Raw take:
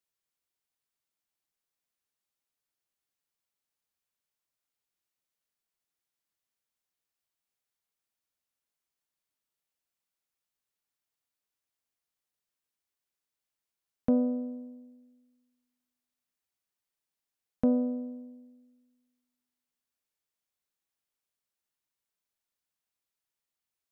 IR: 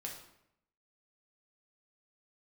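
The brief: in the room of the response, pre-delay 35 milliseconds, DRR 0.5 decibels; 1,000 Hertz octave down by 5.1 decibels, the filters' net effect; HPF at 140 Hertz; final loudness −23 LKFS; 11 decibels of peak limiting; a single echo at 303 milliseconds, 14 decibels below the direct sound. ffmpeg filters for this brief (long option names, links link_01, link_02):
-filter_complex "[0:a]highpass=140,equalizer=frequency=1000:width_type=o:gain=-8,alimiter=level_in=3dB:limit=-24dB:level=0:latency=1,volume=-3dB,aecho=1:1:303:0.2,asplit=2[link_01][link_02];[1:a]atrim=start_sample=2205,adelay=35[link_03];[link_02][link_03]afir=irnorm=-1:irlink=0,volume=1.5dB[link_04];[link_01][link_04]amix=inputs=2:normalize=0,volume=10.5dB"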